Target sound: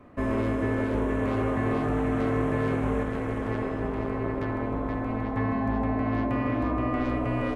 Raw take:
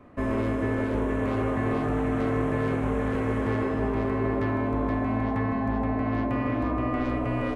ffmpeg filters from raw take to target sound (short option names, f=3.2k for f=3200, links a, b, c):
-filter_complex "[0:a]asettb=1/sr,asplit=3[a][b][c];[a]atrim=end=3.034[d];[b]atrim=start=3.03:end=5.37,asetpts=PTS-STARTPTS,afade=t=in:d=0.004:c=qsin,afade=t=out:st=2.336:d=0.004:c=qsin,tremolo=f=230:d=0.71[e];[c]atrim=start=5.366[f];[d][e]acrossfade=d=0.004:c1=hsin:c2=qsin[g];[g][f]acrossfade=d=0.004:c1=qsin:c2=hsin"